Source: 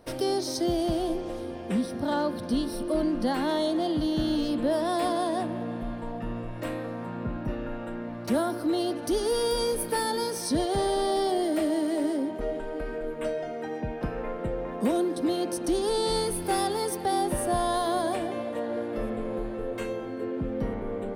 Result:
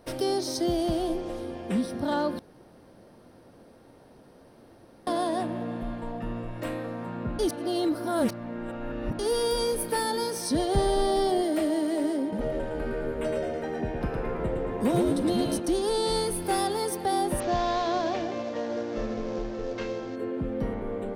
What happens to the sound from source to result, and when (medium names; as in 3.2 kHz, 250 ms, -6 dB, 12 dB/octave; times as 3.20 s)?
2.39–5.07 s: room tone
7.39–9.19 s: reverse
10.67–11.42 s: bass shelf 150 Hz +11 dB
12.21–15.60 s: frequency-shifting echo 112 ms, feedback 44%, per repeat -74 Hz, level -3.5 dB
17.40–20.16 s: CVSD coder 32 kbps